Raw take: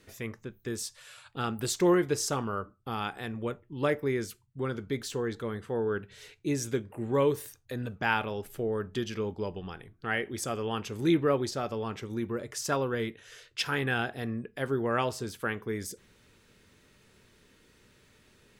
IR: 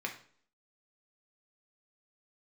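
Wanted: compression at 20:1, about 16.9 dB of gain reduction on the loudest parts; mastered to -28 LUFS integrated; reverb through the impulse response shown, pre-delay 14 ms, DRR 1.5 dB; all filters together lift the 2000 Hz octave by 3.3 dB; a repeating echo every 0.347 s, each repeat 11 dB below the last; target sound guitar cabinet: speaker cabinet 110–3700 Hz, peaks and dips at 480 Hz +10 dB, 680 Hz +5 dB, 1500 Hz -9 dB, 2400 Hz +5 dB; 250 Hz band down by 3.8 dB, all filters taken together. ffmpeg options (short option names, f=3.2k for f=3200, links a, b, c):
-filter_complex "[0:a]equalizer=f=250:t=o:g=-7.5,equalizer=f=2k:t=o:g=7,acompressor=threshold=-37dB:ratio=20,aecho=1:1:347|694|1041:0.282|0.0789|0.0221,asplit=2[a][b];[1:a]atrim=start_sample=2205,adelay=14[c];[b][c]afir=irnorm=-1:irlink=0,volume=-4.5dB[d];[a][d]amix=inputs=2:normalize=0,highpass=110,equalizer=f=480:t=q:w=4:g=10,equalizer=f=680:t=q:w=4:g=5,equalizer=f=1.5k:t=q:w=4:g=-9,equalizer=f=2.4k:t=q:w=4:g=5,lowpass=f=3.7k:w=0.5412,lowpass=f=3.7k:w=1.3066,volume=9.5dB"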